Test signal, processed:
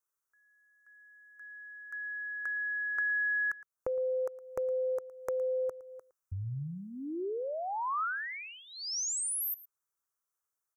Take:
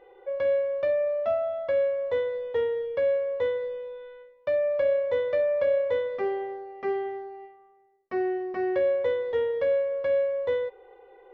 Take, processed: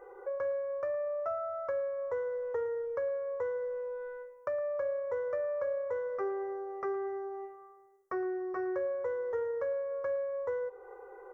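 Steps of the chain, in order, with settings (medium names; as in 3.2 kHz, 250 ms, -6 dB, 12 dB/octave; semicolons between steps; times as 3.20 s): FFT filter 140 Hz 0 dB, 220 Hz -14 dB, 390 Hz +4 dB, 720 Hz 0 dB, 1.3 kHz +12 dB, 3.5 kHz -24 dB, 5.9 kHz +6 dB; compression 2.5:1, threshold -37 dBFS; delay 113 ms -18.5 dB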